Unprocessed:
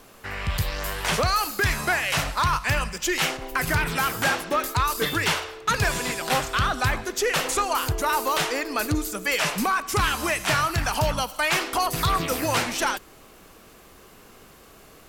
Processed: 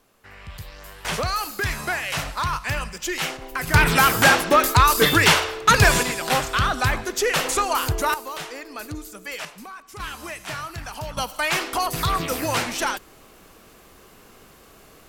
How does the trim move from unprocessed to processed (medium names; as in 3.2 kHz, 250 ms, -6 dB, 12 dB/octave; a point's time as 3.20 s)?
-12 dB
from 1.05 s -2.5 dB
from 3.74 s +8 dB
from 6.03 s +2 dB
from 8.14 s -9 dB
from 9.45 s -16 dB
from 10.00 s -9.5 dB
from 11.17 s 0 dB